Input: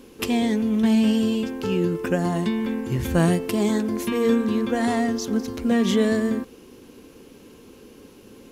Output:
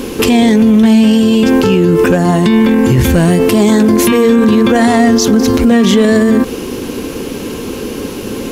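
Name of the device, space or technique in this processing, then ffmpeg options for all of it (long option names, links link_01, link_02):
loud club master: -af "acompressor=threshold=-25dB:ratio=1.5,asoftclip=type=hard:threshold=-16dB,alimiter=level_in=26.5dB:limit=-1dB:release=50:level=0:latency=1,volume=-1dB"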